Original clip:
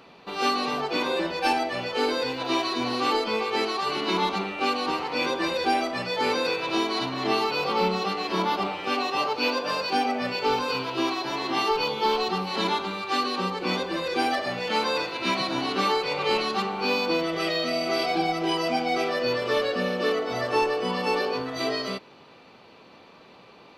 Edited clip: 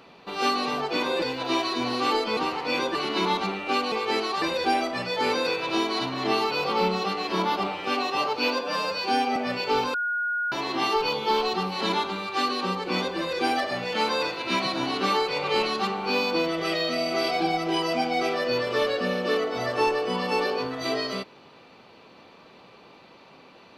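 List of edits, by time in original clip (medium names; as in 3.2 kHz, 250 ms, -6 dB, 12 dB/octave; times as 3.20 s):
1.22–2.22 s: delete
3.37–3.87 s: swap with 4.84–5.42 s
9.61–10.11 s: stretch 1.5×
10.69–11.27 s: bleep 1.44 kHz -24 dBFS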